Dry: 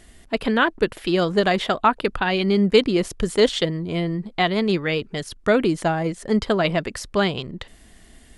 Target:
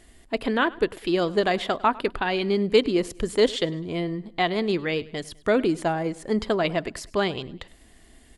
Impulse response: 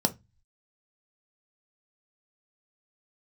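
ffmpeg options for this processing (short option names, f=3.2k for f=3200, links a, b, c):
-filter_complex "[0:a]aecho=1:1:102|204|306:0.0841|0.0353|0.0148,asplit=2[a][b];[1:a]atrim=start_sample=2205,asetrate=57330,aresample=44100[c];[b][c]afir=irnorm=-1:irlink=0,volume=-23.5dB[d];[a][d]amix=inputs=2:normalize=0,volume=-4.5dB"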